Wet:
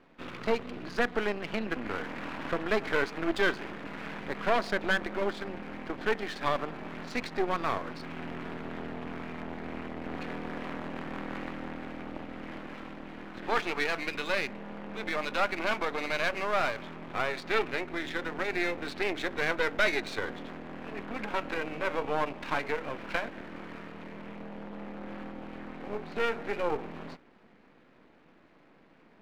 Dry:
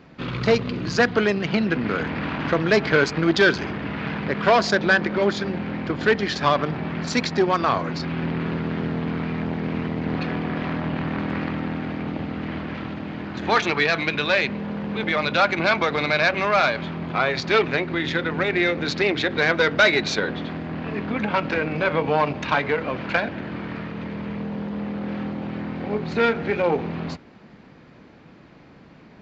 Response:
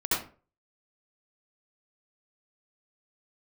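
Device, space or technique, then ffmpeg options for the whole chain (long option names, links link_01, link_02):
crystal radio: -af "highpass=240,lowpass=3300,aeval=exprs='if(lt(val(0),0),0.251*val(0),val(0))':channel_layout=same,volume=-6dB"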